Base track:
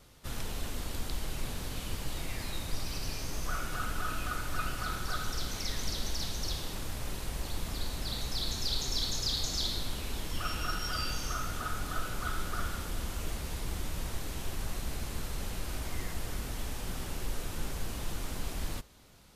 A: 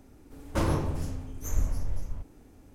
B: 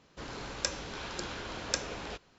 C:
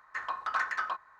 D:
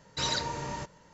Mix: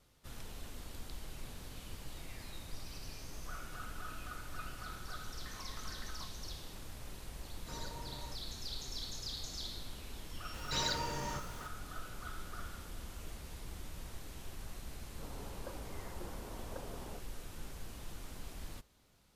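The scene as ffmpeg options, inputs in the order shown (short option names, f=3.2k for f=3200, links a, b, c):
-filter_complex "[4:a]asplit=2[a][b];[0:a]volume=-10.5dB[c];[3:a]acompressor=threshold=-41dB:ratio=6:attack=3.2:release=140:knee=1:detection=peak[d];[a]equalizer=f=3.1k:t=o:w=1.1:g=-14[e];[b]aeval=exprs='val(0)+0.5*0.0075*sgn(val(0))':c=same[f];[2:a]lowpass=f=1.1k:w=0.5412,lowpass=f=1.1k:w=1.3066[g];[d]atrim=end=1.19,asetpts=PTS-STARTPTS,volume=-8.5dB,afade=t=in:d=0.004:c=hsin,afade=t=out:st=1.186:d=0.004:c=hsin,adelay=5310[h];[e]atrim=end=1.13,asetpts=PTS-STARTPTS,volume=-13.5dB,afade=t=in:d=0.004:c=hsin,afade=t=out:st=1.126:d=0.004:c=hsin,adelay=7500[i];[f]atrim=end=1.13,asetpts=PTS-STARTPTS,volume=-5.5dB,afade=t=in:d=0.004:c=hsin,afade=t=out:st=1.126:d=0.004:c=hsin,adelay=10540[j];[g]atrim=end=2.38,asetpts=PTS-STARTPTS,volume=-7dB,afade=t=in:d=0.004:c=hsin,afade=t=out:st=2.376:d=0.004:c=hsin,adelay=15020[k];[c][h][i][j][k]amix=inputs=5:normalize=0"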